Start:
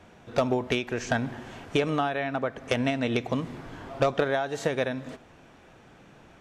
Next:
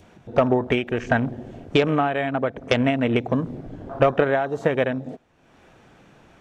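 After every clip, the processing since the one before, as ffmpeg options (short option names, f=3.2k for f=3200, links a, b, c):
-af "afwtdn=0.0158,adynamicequalizer=threshold=0.0126:dfrequency=1300:dqfactor=0.74:tfrequency=1300:tqfactor=0.74:attack=5:release=100:ratio=0.375:range=2:mode=cutabove:tftype=bell,acompressor=mode=upward:threshold=-47dB:ratio=2.5,volume=6.5dB"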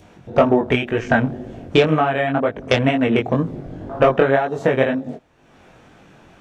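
-af "flanger=delay=18.5:depth=4.9:speed=2,volume=7dB"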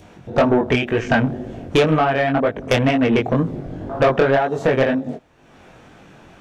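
-af "asoftclip=type=tanh:threshold=-11dB,volume=2.5dB"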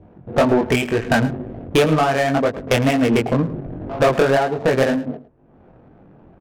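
-af "adynamicsmooth=sensitivity=2.5:basefreq=570,aecho=1:1:108:0.15"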